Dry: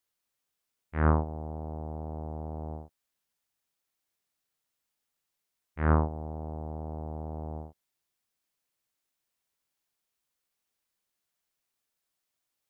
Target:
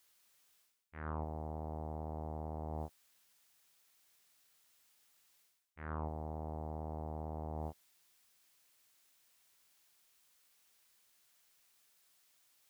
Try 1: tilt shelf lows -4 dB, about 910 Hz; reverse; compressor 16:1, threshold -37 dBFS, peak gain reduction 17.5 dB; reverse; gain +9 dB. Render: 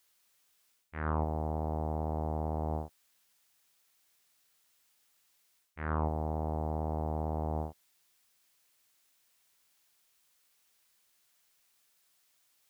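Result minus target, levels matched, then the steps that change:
compressor: peak gain reduction -9 dB
change: compressor 16:1, threshold -46.5 dBFS, peak gain reduction 26.5 dB

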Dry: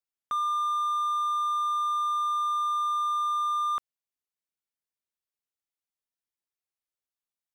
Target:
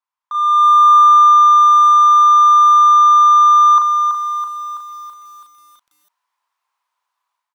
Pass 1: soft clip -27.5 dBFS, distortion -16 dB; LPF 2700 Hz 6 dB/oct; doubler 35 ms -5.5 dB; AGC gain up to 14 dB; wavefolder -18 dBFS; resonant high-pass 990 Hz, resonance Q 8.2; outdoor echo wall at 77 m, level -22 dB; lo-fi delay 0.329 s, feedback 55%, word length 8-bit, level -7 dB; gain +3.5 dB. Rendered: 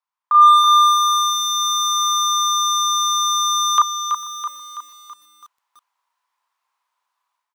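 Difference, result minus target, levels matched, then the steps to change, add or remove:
soft clip: distortion -8 dB
change: soft clip -37.5 dBFS, distortion -8 dB

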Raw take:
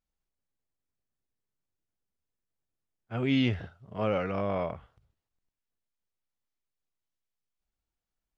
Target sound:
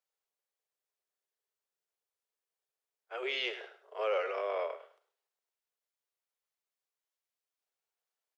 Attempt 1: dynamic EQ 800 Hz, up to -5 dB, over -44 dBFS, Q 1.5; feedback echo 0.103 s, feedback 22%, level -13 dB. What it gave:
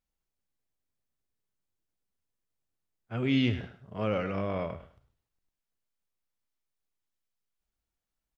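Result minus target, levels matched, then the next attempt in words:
500 Hz band -4.0 dB
dynamic EQ 800 Hz, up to -5 dB, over -44 dBFS, Q 1.5; steep high-pass 390 Hz 72 dB/oct; feedback echo 0.103 s, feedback 22%, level -13 dB

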